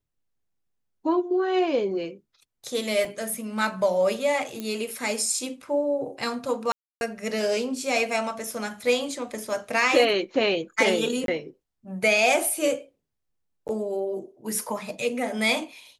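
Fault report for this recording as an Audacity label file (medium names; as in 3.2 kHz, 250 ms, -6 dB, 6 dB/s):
3.050000	3.050000	dropout 3.9 ms
4.600000	4.600000	pop -18 dBFS
6.720000	7.010000	dropout 291 ms
11.260000	11.280000	dropout 22 ms
13.680000	13.690000	dropout 9.6 ms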